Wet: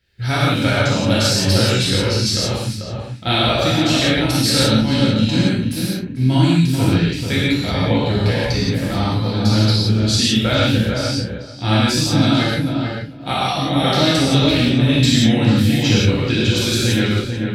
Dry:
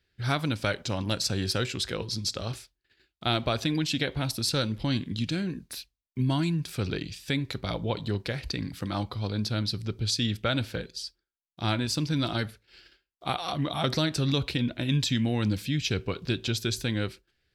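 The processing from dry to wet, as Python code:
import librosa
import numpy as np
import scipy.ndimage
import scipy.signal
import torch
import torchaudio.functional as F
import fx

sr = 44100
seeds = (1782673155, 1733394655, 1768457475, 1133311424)

p1 = fx.notch(x, sr, hz=1100.0, q=9.0)
p2 = fx.doubler(p1, sr, ms=41.0, db=-12)
p3 = p2 + fx.echo_filtered(p2, sr, ms=441, feedback_pct=18, hz=1500.0, wet_db=-4.0, dry=0)
p4 = fx.rev_gated(p3, sr, seeds[0], gate_ms=200, shape='flat', drr_db=-8.0)
y = p4 * 10.0 ** (3.5 / 20.0)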